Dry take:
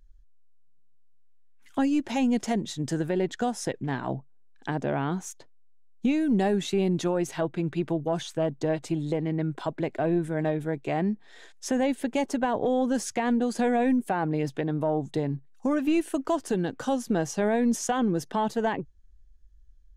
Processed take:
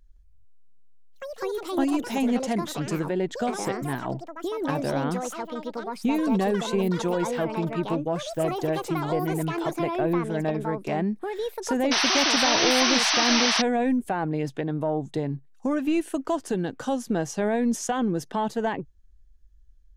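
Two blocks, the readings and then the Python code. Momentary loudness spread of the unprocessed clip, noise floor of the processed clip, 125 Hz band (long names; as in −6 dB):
7 LU, −52 dBFS, 0.0 dB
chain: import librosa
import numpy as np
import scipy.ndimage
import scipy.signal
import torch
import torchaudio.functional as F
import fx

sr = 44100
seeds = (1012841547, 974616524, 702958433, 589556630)

y = fx.echo_pitch(x, sr, ms=165, semitones=6, count=2, db_per_echo=-6.0)
y = fx.spec_paint(y, sr, seeds[0], shape='noise', start_s=11.91, length_s=1.71, low_hz=620.0, high_hz=6200.0, level_db=-23.0)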